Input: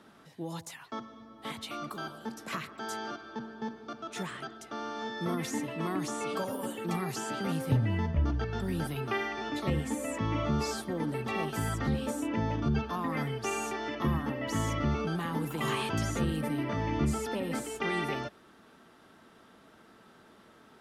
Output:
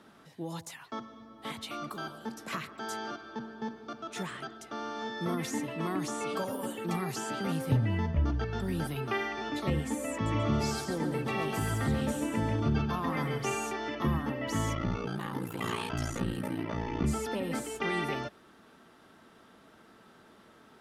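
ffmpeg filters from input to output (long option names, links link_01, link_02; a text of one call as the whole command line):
ffmpeg -i in.wav -filter_complex "[0:a]asettb=1/sr,asplit=3[link_01][link_02][link_03];[link_01]atrim=end=10.124[link_04];[link_02]atrim=start=10.12:end=13.55,asetpts=PTS-STARTPTS,afade=type=in:duration=0.004:curve=qsin,afade=type=out:start_time=3.426:duration=0.004:curve=qsin,aecho=1:1:138|276|414|552:0.531|0.165|0.051|0.0158,atrim=end_sample=151263[link_05];[link_03]atrim=start=13.546[link_06];[link_04][link_05]acrossfade=duration=0.004:curve1=hsin:curve2=qsin[link_07];[link_07][link_06]acrossfade=duration=0.004:curve1=qsin:curve2=hsin,asettb=1/sr,asplit=3[link_08][link_09][link_10];[link_08]atrim=end=14.744[link_11];[link_09]atrim=start=14.74:end=17.04,asetpts=PTS-STARTPTS,afade=type=in:duration=0.004:curve=qsin,afade=type=out:start_time=2.296:duration=0.004:curve=qsin,aeval=exprs='val(0)*sin(2*PI*29*n/s)':channel_layout=same[link_12];[link_10]atrim=start=17.036[link_13];[link_11][link_12]acrossfade=duration=0.004:curve1=hsin:curve2=qsin[link_14];[link_14][link_13]acrossfade=duration=0.004:curve1=qsin:curve2=hsin" out.wav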